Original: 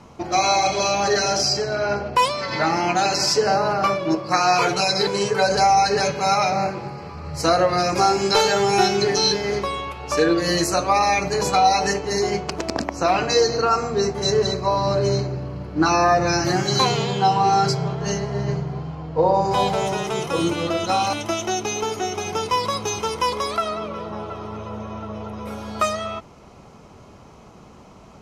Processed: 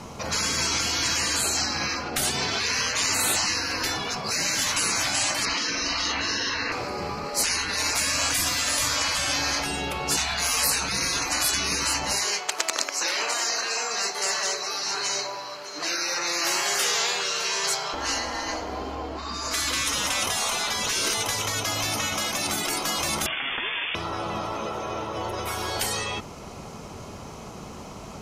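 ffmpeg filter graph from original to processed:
-filter_complex "[0:a]asettb=1/sr,asplit=3[a][b][c];[a]atrim=end=5.454[d];[b]atrim=start=5.45:end=6.72,asetpts=PTS-STARTPTS,afade=t=in:d=0.004:c=qsin,afade=t=out:st=1.266:d=0.004:c=qsin,lowpass=f=2.6k:t=q:w=3,asplit=2[e][f];[f]adelay=43,volume=-2.5dB[g];[e][g]amix=inputs=2:normalize=0,atrim=end_sample=56007[h];[c]atrim=start=6.716[i];[d][h]acrossfade=d=0.004:c1=hsin:c2=qsin[j];[j][i]acrossfade=d=0.004:c1=qsin:c2=hsin,asettb=1/sr,asplit=3[k][l][m];[k]atrim=end=12.124[n];[l]atrim=start=12.12:end=17.94,asetpts=PTS-STARTPTS,afade=t=in:d=0.004:c=qsin,afade=t=out:st=5.816:d=0.004:c=qsin,highpass=1.1k,aecho=1:1:610:0.141,atrim=end_sample=256662[o];[m]atrim=start=17.936[p];[n][o]acrossfade=d=0.004:c1=hsin:c2=qsin[q];[q][p]acrossfade=d=0.004:c1=qsin:c2=hsin,asettb=1/sr,asplit=3[r][s][t];[r]atrim=end=23.264[u];[s]atrim=start=23.26:end=23.95,asetpts=PTS-STARTPTS,afade=t=in:d=0.004:c=qsin,afade=t=out:st=0.686:d=0.004:c=qsin,lowshelf=f=420:g=6.5,acrusher=bits=3:dc=4:mix=0:aa=0.000001,lowpass=f=3.1k:t=q:w=0.5098,lowpass=f=3.1k:t=q:w=0.6013,lowpass=f=3.1k:t=q:w=0.9,lowpass=f=3.1k:t=q:w=2.563,afreqshift=-3600[v];[t]atrim=start=23.946[w];[u][v]acrossfade=d=0.004:c1=hsin:c2=qsin[x];[x][w]acrossfade=d=0.004:c1=qsin:c2=hsin,asettb=1/sr,asplit=3[y][z][aa];[y]atrim=end=25.164[ab];[z]atrim=start=25.16:end=25.77,asetpts=PTS-STARTPTS,afade=t=in:d=0.004:c=qsin,afade=t=out:st=0.606:d=0.004:c=qsin,bandreject=f=1.3k:w=30,aecho=1:1:5.4:0.68,atrim=end_sample=26901[ac];[aa]atrim=start=25.766[ad];[ab][ac]acrossfade=d=0.004:c1=hsin:c2=qsin[ae];[ae][ad]acrossfade=d=0.004:c1=qsin:c2=hsin,aemphasis=mode=production:type=cd,bandreject=f=63.84:t=h:w=4,bandreject=f=127.68:t=h:w=4,bandreject=f=191.52:t=h:w=4,bandreject=f=255.36:t=h:w=4,bandreject=f=319.2:t=h:w=4,afftfilt=real='re*lt(hypot(re,im),0.1)':imag='im*lt(hypot(re,im),0.1)':win_size=1024:overlap=0.75,volume=6.5dB"

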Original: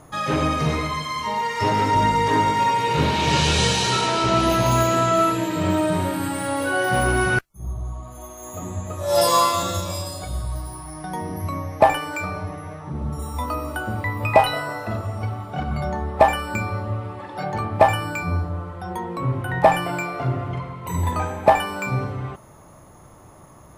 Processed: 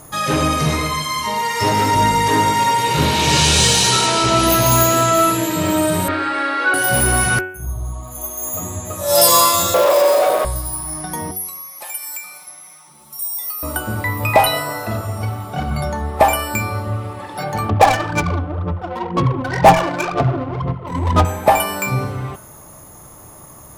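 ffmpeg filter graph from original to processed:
-filter_complex "[0:a]asettb=1/sr,asplit=3[a][b][c];[a]atrim=end=6.084[d];[b]atrim=start=6.08:end=6.74,asetpts=PTS-STARTPTS,afade=t=in:d=0.004:c=qsin,afade=t=out:st=0.656:d=0.004:c=qsin,acontrast=60,highpass=f=350:w=0.5412,highpass=f=350:w=1.3066,equalizer=f=540:t=q:w=4:g=-7,equalizer=f=900:t=q:w=4:g=-9,equalizer=f=1.4k:t=q:w=4:g=6,equalizer=f=3.1k:t=q:w=4:g=-8,lowpass=f=3.6k:w=0.5412,lowpass=f=3.6k:w=1.3066[e];[c]atrim=start=6.736[f];[d][e]acrossfade=d=0.004:c1=hsin:c2=qsin[g];[g][f]acrossfade=d=0.004:c1=qsin:c2=hsin,asettb=1/sr,asplit=3[h][i][j];[h]atrim=end=9.744[k];[i]atrim=start=9.74:end=10.45,asetpts=PTS-STARTPTS,afade=t=in:d=0.004:c=qsin,afade=t=out:st=0.706:d=0.004:c=qsin,equalizer=f=6.6k:t=o:w=1.9:g=-14,asplit=2[l][m];[m]highpass=f=720:p=1,volume=33dB,asoftclip=type=tanh:threshold=-14.5dB[n];[l][n]amix=inputs=2:normalize=0,lowpass=f=1.6k:p=1,volume=-6dB,highpass=f=490:t=q:w=3.7[o];[j]atrim=start=10.446[p];[k][o]acrossfade=d=0.004:c1=hsin:c2=qsin[q];[q][p]acrossfade=d=0.004:c1=qsin:c2=hsin,asettb=1/sr,asplit=3[r][s][t];[r]atrim=end=11.314[u];[s]atrim=start=11.31:end=13.63,asetpts=PTS-STARTPTS,afade=t=in:d=0.004:c=qsin,afade=t=out:st=2.316:d=0.004:c=qsin,aderivative,aecho=1:1:5.6:0.9,atrim=end_sample=102312,acompressor=threshold=-39dB:ratio=2.5:attack=3.2:release=140:knee=1:detection=peak[v];[t]atrim=start=13.626[w];[u][v]acrossfade=d=0.004:c1=hsin:c2=qsin[x];[x][w]acrossfade=d=0.004:c1=qsin:c2=hsin,asettb=1/sr,asplit=3[y][z][aa];[y]atrim=end=17.694[ab];[z]atrim=start=17.69:end=21.25,asetpts=PTS-STARTPTS,afade=t=in:d=0.004:c=qsin,afade=t=out:st=3.556:d=0.004:c=qsin,aphaser=in_gain=1:out_gain=1:delay=4:decay=0.72:speed=2:type=sinusoidal,adynamicsmooth=sensitivity=1:basefreq=840[ac];[aa]atrim=start=21.246[ad];[ab][ac]acrossfade=d=0.004:c1=hsin:c2=qsin[ae];[ae][ad]acrossfade=d=0.004:c1=qsin:c2=hsin,aemphasis=mode=production:type=50fm,bandreject=f=92.74:t=h:w=4,bandreject=f=185.48:t=h:w=4,bandreject=f=278.22:t=h:w=4,bandreject=f=370.96:t=h:w=4,bandreject=f=463.7:t=h:w=4,bandreject=f=556.44:t=h:w=4,bandreject=f=649.18:t=h:w=4,bandreject=f=741.92:t=h:w=4,bandreject=f=834.66:t=h:w=4,bandreject=f=927.4:t=h:w=4,bandreject=f=1.02014k:t=h:w=4,bandreject=f=1.11288k:t=h:w=4,bandreject=f=1.20562k:t=h:w=4,bandreject=f=1.29836k:t=h:w=4,bandreject=f=1.3911k:t=h:w=4,bandreject=f=1.48384k:t=h:w=4,bandreject=f=1.57658k:t=h:w=4,bandreject=f=1.66932k:t=h:w=4,bandreject=f=1.76206k:t=h:w=4,bandreject=f=1.8548k:t=h:w=4,bandreject=f=1.94754k:t=h:w=4,bandreject=f=2.04028k:t=h:w=4,bandreject=f=2.13302k:t=h:w=4,bandreject=f=2.22576k:t=h:w=4,bandreject=f=2.3185k:t=h:w=4,bandreject=f=2.41124k:t=h:w=4,bandreject=f=2.50398k:t=h:w=4,bandreject=f=2.59672k:t=h:w=4,bandreject=f=2.68946k:t=h:w=4,bandreject=f=2.7822k:t=h:w=4,bandreject=f=2.87494k:t=h:w=4,bandreject=f=2.96768k:t=h:w=4,bandreject=f=3.06042k:t=h:w=4,bandreject=f=3.15316k:t=h:w=4,bandreject=f=3.2459k:t=h:w=4,bandreject=f=3.33864k:t=h:w=4,bandreject=f=3.43138k:t=h:w=4,acontrast=38,volume=-1dB"

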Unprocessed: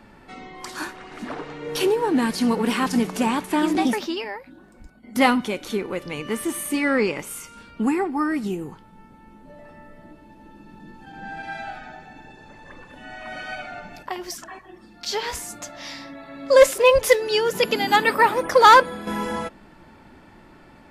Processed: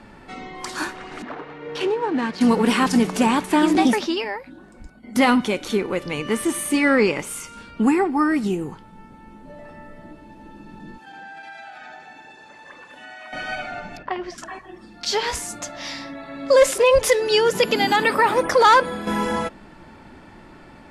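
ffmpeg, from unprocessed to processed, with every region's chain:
-filter_complex "[0:a]asettb=1/sr,asplit=3[a][b][c];[a]atrim=end=1.224[d];[b]atrim=start=1.22:end=2.41,asetpts=PTS-STARTPTS,afade=t=in:d=0.004:c=qsin,afade=t=out:st=1.186:d=0.004:c=qsin,aemphasis=mode=reproduction:type=riaa,adynamicsmooth=sensitivity=6:basefreq=3.7k,highpass=f=1.2k:p=1[e];[c]atrim=start=2.406[f];[d][e]acrossfade=d=0.004:c1=hsin:c2=qsin[g];[g][f]acrossfade=d=0.004:c1=qsin:c2=hsin,asettb=1/sr,asplit=3[h][i][j];[h]atrim=end=10.984[k];[i]atrim=start=10.98:end=13.33,asetpts=PTS-STARTPTS,afade=t=in:d=0.004:c=qsin,afade=t=out:st=2.346:d=0.004:c=qsin,highpass=f=740:p=1,acompressor=threshold=-39dB:ratio=12:attack=3.2:release=140:knee=1:detection=peak[l];[j]atrim=start=13.326[m];[k][l]acrossfade=d=0.004:c1=hsin:c2=qsin[n];[n][m]acrossfade=d=0.004:c1=qsin:c2=hsin,asettb=1/sr,asplit=3[o][p][q];[o]atrim=end=13.974[r];[p]atrim=start=13.97:end=14.38,asetpts=PTS-STARTPTS,afade=t=in:d=0.004:c=qsin,afade=t=out:st=0.406:d=0.004:c=qsin,lowpass=2.6k,bandreject=f=870:w=10[s];[q]atrim=start=14.376[t];[r][s]acrossfade=d=0.004:c1=hsin:c2=qsin[u];[u][t]acrossfade=d=0.004:c1=qsin:c2=hsin,lowpass=f=11k:w=0.5412,lowpass=f=11k:w=1.3066,alimiter=level_in=10.5dB:limit=-1dB:release=50:level=0:latency=1,volume=-6.5dB"

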